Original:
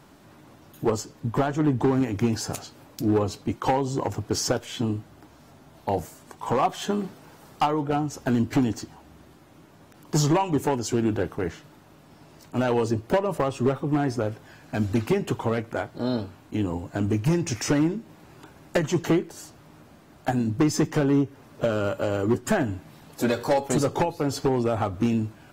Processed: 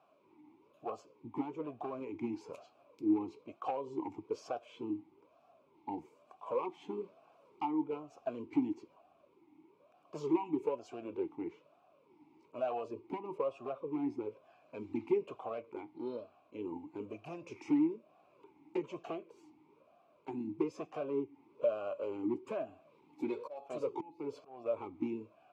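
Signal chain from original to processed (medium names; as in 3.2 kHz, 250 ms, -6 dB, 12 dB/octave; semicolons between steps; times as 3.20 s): 23.36–24.66 s: slow attack 274 ms; talking filter a-u 1.1 Hz; trim -3 dB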